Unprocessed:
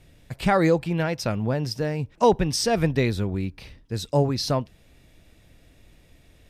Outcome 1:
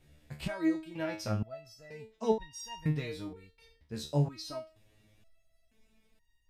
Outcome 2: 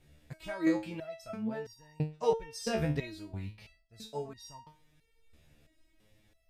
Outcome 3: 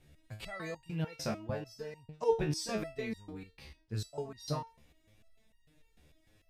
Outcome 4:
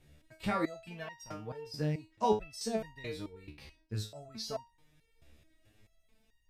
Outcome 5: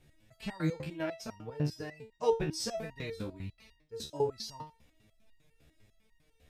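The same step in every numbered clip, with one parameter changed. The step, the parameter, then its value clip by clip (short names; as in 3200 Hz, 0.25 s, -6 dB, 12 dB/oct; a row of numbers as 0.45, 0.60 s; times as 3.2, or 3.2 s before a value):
stepped resonator, rate: 2.1, 3, 6.7, 4.6, 10 Hz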